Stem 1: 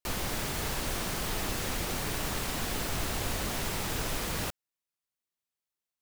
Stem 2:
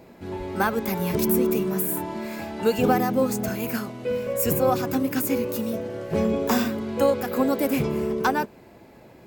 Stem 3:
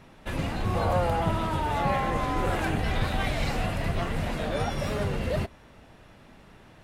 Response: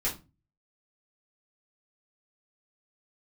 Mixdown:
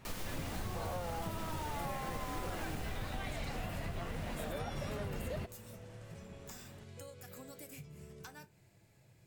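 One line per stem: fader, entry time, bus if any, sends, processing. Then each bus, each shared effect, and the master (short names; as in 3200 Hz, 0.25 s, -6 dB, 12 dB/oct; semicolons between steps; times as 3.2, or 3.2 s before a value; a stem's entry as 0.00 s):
2.74 s -10 dB -> 3.41 s -20.5 dB, 0.00 s, send -12.5 dB, dry
-15.5 dB, 0.00 s, send -15 dB, graphic EQ 125/250/500/1000/8000 Hz +11/-12/-6/-8/+10 dB; compressor 10:1, threshold -33 dBFS, peak gain reduction 16 dB
-6.5 dB, 0.00 s, no send, dry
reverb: on, RT60 0.30 s, pre-delay 3 ms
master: compressor, threshold -36 dBFS, peak gain reduction 10 dB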